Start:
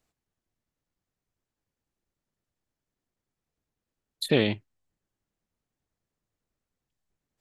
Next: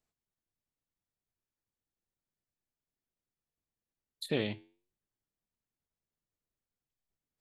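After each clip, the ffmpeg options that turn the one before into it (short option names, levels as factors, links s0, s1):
-af "flanger=delay=4.7:depth=6.4:regen=-85:speed=0.34:shape=sinusoidal,volume=0.562"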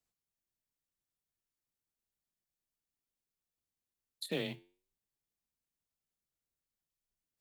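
-af "afreqshift=19,highshelf=f=3700:g=7,acrusher=bits=6:mode=log:mix=0:aa=0.000001,volume=0.562"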